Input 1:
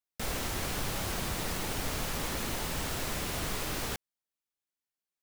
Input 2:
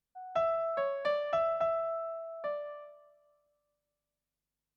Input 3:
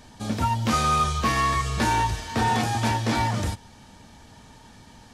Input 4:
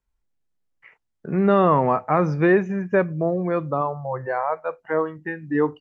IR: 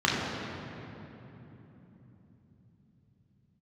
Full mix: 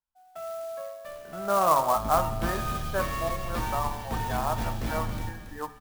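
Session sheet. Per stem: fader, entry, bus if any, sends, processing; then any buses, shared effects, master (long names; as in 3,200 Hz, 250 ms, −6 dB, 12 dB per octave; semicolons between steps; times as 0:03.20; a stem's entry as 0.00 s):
−11.5 dB, 0.85 s, no send, no echo send, no processing
−1.0 dB, 0.00 s, no send, no echo send, no processing
−1.0 dB, 1.75 s, no send, echo send −9.5 dB, sub-octave generator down 2 octaves, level +4 dB
−5.0 dB, 0.00 s, no send, no echo send, flat-topped bell 980 Hz +14 dB; expander for the loud parts 1.5 to 1, over −16 dBFS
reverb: not used
echo: single-tap delay 278 ms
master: tuned comb filter 110 Hz, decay 1.6 s, mix 70%; hum removal 72.54 Hz, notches 36; converter with an unsteady clock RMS 0.03 ms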